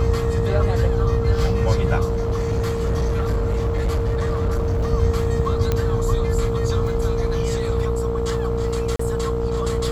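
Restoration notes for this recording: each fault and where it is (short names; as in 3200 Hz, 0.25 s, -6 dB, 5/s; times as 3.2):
buzz 60 Hz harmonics 23 -25 dBFS
tone 460 Hz -23 dBFS
2.08–4.93 clipped -17 dBFS
5.72 pop -8 dBFS
8.96–8.99 gap 34 ms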